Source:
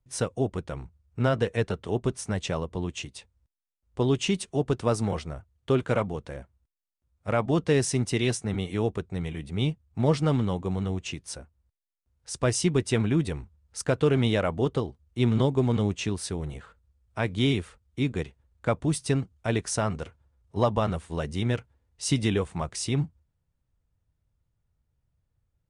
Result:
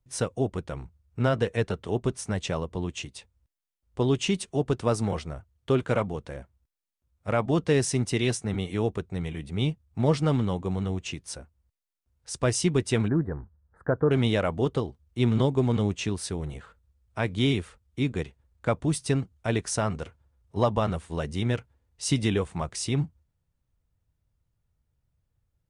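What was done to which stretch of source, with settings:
0:13.08–0:14.11: elliptic low-pass filter 1,700 Hz

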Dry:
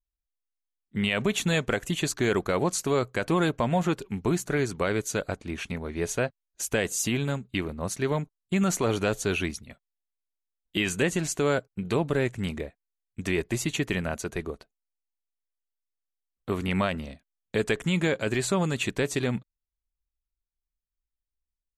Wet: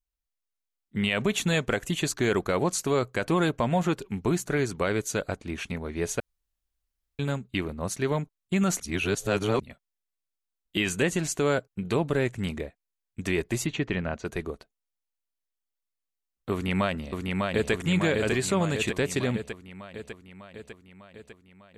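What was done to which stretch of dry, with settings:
0:06.20–0:07.19: fill with room tone
0:08.80–0:09.60: reverse
0:13.66–0:14.25: high-frequency loss of the air 180 metres
0:16.52–0:17.72: delay throw 600 ms, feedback 65%, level −2.5 dB

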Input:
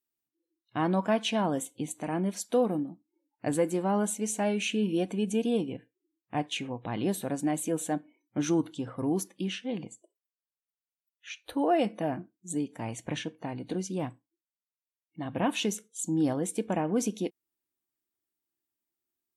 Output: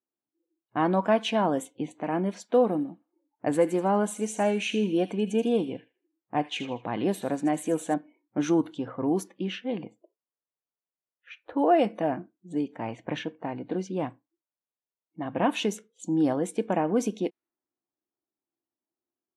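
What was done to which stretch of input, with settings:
0:02.59–0:07.94: delay with a high-pass on its return 79 ms, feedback 38%, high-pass 2,300 Hz, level −9 dB
whole clip: high-pass filter 300 Hz 6 dB per octave; low-pass that shuts in the quiet parts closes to 930 Hz, open at −28 dBFS; high-shelf EQ 3,100 Hz −11.5 dB; level +6 dB

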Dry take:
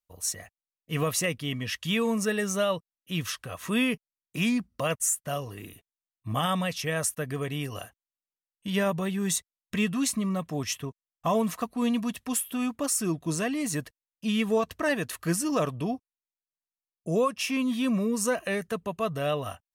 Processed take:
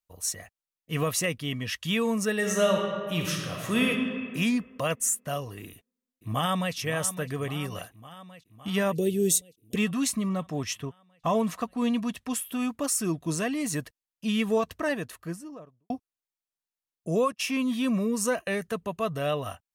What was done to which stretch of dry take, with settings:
0:02.36–0:03.87: thrown reverb, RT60 2 s, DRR 0 dB
0:05.65–0:06.75: delay throw 560 ms, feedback 70%, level −13 dB
0:08.93–0:09.76: drawn EQ curve 190 Hz 0 dB, 430 Hz +12 dB, 1,100 Hz −27 dB, 2,700 Hz −3 dB, 12,000 Hz +8 dB
0:10.28–0:12.42: high-shelf EQ 11,000 Hz −10.5 dB
0:14.57–0:15.90: fade out and dull
0:17.32–0:18.53: downward expander −37 dBFS

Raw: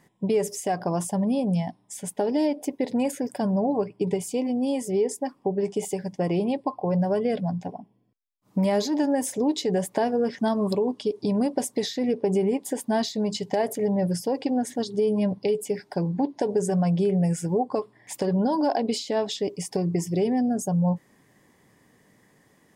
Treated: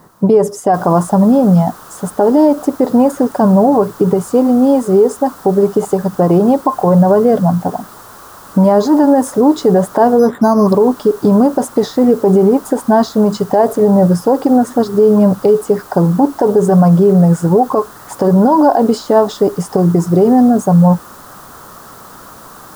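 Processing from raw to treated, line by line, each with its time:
0:00.74: noise floor change −60 dB −45 dB
0:10.19–0:10.67: bad sample-rate conversion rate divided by 8×, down filtered, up hold
whole clip: high shelf with overshoot 1,700 Hz −10.5 dB, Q 3; boost into a limiter +16 dB; level −1 dB

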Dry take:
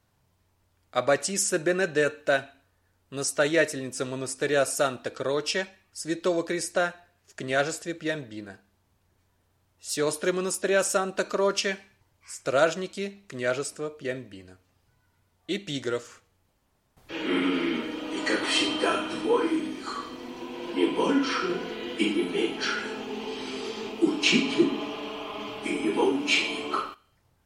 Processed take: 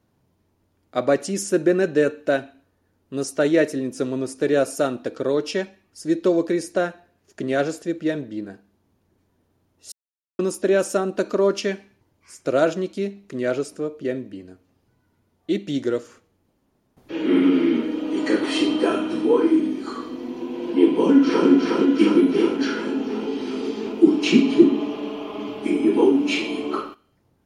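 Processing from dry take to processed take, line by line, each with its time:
0:09.92–0:10.39: silence
0:20.90–0:21.49: delay throw 360 ms, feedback 70%, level −1.5 dB
whole clip: parametric band 280 Hz +13 dB 2.1 octaves; notch filter 7,900 Hz, Q 11; level −3 dB

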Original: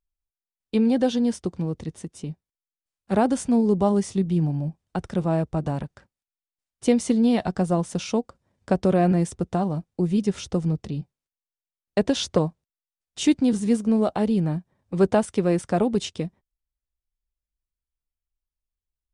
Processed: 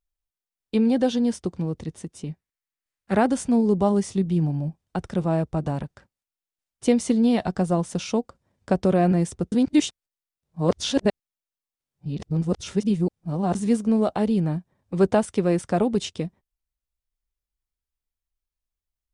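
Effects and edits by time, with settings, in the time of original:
0:02.27–0:03.27: parametric band 1,900 Hz +8 dB 0.73 octaves
0:09.52–0:13.55: reverse

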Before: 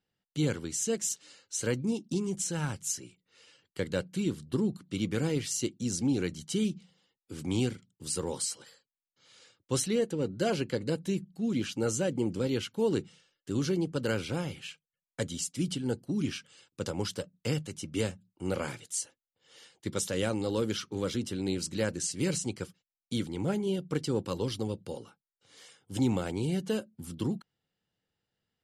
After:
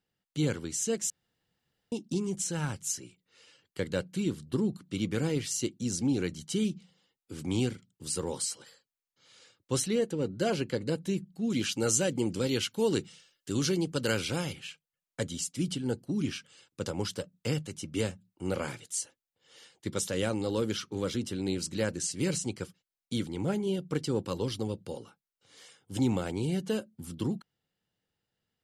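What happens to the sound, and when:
0:01.10–0:01.92: fill with room tone
0:11.50–0:14.53: high-shelf EQ 2,100 Hz +8.5 dB

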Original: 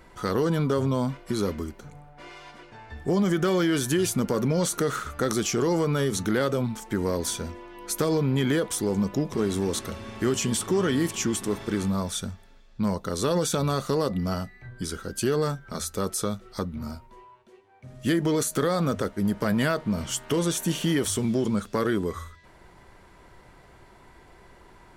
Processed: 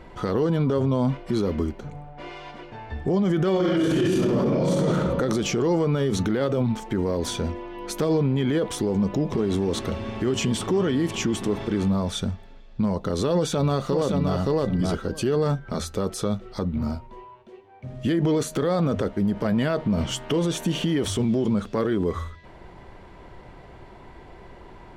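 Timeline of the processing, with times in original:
0:03.52–0:04.71: thrown reverb, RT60 1.6 s, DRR −9 dB
0:13.34–0:14.37: delay throw 570 ms, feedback 10%, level −4 dB
whole clip: drawn EQ curve 770 Hz 0 dB, 1,400 Hz −6 dB, 3,000 Hz −3 dB, 11,000 Hz −17 dB; brickwall limiter −23 dBFS; level +8 dB

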